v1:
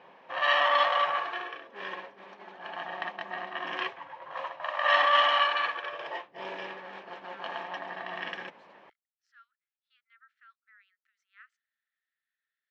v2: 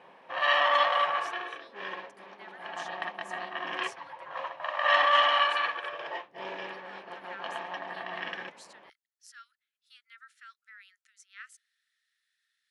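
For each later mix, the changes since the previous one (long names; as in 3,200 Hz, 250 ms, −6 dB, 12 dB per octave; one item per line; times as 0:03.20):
speech: remove head-to-tape spacing loss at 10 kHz 45 dB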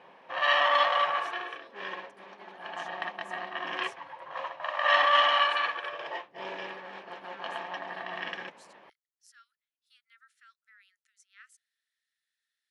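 speech −8.0 dB
master: add high-shelf EQ 6,600 Hz +4.5 dB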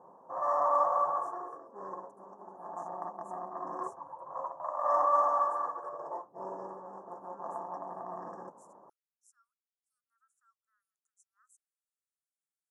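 speech: add high-shelf EQ 9,100 Hz −5.5 dB
master: add elliptic band-stop filter 1,100–7,100 Hz, stop band 50 dB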